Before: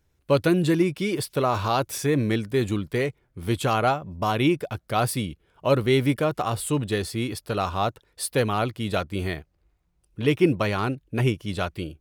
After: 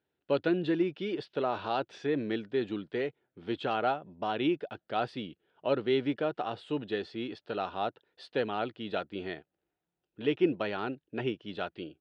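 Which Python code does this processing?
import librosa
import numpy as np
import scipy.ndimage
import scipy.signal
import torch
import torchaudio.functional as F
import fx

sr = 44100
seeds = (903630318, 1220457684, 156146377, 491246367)

y = fx.cabinet(x, sr, low_hz=280.0, low_slope=12, high_hz=3500.0, hz=(550.0, 1100.0, 2200.0), db=(-3, -10, -8))
y = y * librosa.db_to_amplitude(-4.5)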